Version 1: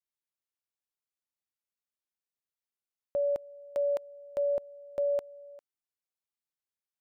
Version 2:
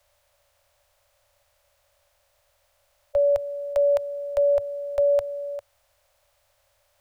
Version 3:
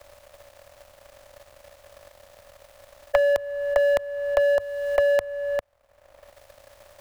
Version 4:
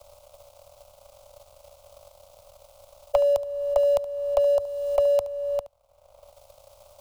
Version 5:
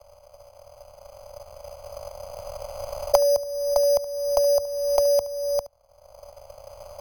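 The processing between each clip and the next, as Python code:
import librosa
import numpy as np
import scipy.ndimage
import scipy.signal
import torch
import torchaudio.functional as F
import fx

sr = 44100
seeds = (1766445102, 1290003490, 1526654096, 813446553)

y1 = fx.bin_compress(x, sr, power=0.6)
y1 = scipy.signal.sosfilt(scipy.signal.ellip(3, 1.0, 40, [100.0, 570.0], 'bandstop', fs=sr, output='sos'), y1)
y1 = fx.low_shelf(y1, sr, hz=140.0, db=9.5)
y1 = y1 * librosa.db_to_amplitude(9.0)
y2 = fx.bin_compress(y1, sr, power=0.6)
y2 = fx.power_curve(y2, sr, exponent=2.0)
y2 = fx.band_squash(y2, sr, depth_pct=100)
y2 = y2 * librosa.db_to_amplitude(7.5)
y3 = fx.fixed_phaser(y2, sr, hz=730.0, stages=4)
y3 = y3 + 10.0 ** (-17.0 / 20.0) * np.pad(y3, (int(72 * sr / 1000.0), 0))[:len(y3)]
y4 = fx.recorder_agc(y3, sr, target_db=-11.0, rise_db_per_s=6.6, max_gain_db=30)
y4 = np.repeat(scipy.signal.resample_poly(y4, 1, 8), 8)[:len(y4)]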